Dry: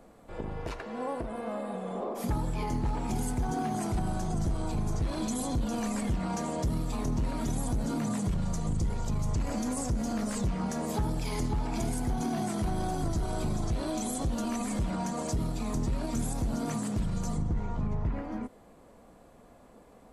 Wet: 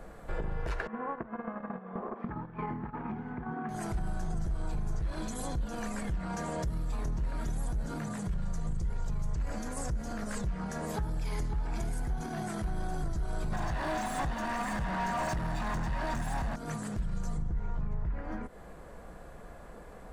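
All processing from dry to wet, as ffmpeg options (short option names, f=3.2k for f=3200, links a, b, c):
-filter_complex "[0:a]asettb=1/sr,asplit=3[a][b][c];[a]atrim=end=0.874[d];[b]atrim=start=0.87:end=3.69,asetpts=PTS-STARTPTS,afade=t=in:d=0.004:c=qsin,afade=t=out:st=2.816:d=0.004:c=qsin,highpass=150,equalizer=f=230:t=q:w=4:g=10,equalizer=f=570:t=q:w=4:g=-5,equalizer=f=1.1k:t=q:w=4:g=6,lowpass=f=2.3k:w=0.5412,lowpass=f=2.3k:w=1.3066,agate=range=-13dB:threshold=-33dB:ratio=16:release=100:detection=peak[e];[c]atrim=start=3.686[f];[d][e]acrossfade=d=0.004:c1=hsin:c2=qsin[g];[g][f]acrossfade=d=0.004:c1=qsin:c2=hsin,asettb=1/sr,asplit=3[h][i][j];[h]atrim=end=13.524[k];[i]atrim=start=13.52:end=16.56,asetpts=PTS-STARTPTS,afade=t=in:d=0.004:c=qsin,afade=t=out:st=3.036:d=0.004:c=qsin,aecho=1:1:1.1:1,atrim=end_sample=134064,asplit=2[l][m];[m]highpass=f=720:p=1,volume=30dB,asoftclip=type=tanh:threshold=-17dB[n];[l][n]amix=inputs=2:normalize=0,lowpass=f=1.6k:p=1,volume=-6dB[o];[j]atrim=start=16.556[p];[k][o]acrossfade=d=0.004:c1=hsin:c2=qsin[q];[q][p]acrossfade=d=0.004:c1=qsin:c2=hsin,lowshelf=f=310:g=11.5,acompressor=threshold=-32dB:ratio=6,equalizer=f=100:t=o:w=0.67:g=-9,equalizer=f=250:t=o:w=0.67:g=-11,equalizer=f=1.6k:t=o:w=0.67:g=9,volume=3.5dB"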